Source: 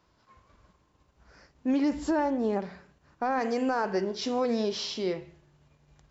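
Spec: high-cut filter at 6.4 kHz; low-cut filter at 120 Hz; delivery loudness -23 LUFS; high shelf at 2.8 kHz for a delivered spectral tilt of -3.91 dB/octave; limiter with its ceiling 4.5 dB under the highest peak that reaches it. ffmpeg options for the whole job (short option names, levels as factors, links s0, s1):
-af "highpass=120,lowpass=6400,highshelf=f=2800:g=8,volume=2.24,alimiter=limit=0.224:level=0:latency=1"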